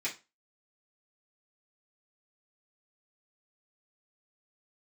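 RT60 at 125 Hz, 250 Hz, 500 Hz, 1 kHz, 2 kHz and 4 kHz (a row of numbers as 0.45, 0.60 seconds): 0.25, 0.30, 0.25, 0.30, 0.25, 0.25 seconds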